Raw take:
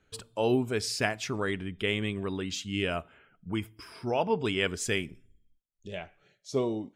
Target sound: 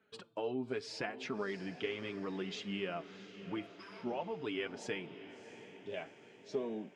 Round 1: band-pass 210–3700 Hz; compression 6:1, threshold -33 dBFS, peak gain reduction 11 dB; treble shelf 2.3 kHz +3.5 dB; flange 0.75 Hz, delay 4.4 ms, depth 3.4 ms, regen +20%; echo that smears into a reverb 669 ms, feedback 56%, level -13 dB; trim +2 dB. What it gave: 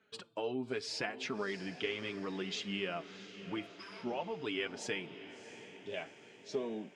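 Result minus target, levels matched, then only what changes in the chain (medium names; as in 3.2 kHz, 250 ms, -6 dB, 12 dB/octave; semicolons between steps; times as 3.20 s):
4 kHz band +3.5 dB
change: treble shelf 2.3 kHz -3.5 dB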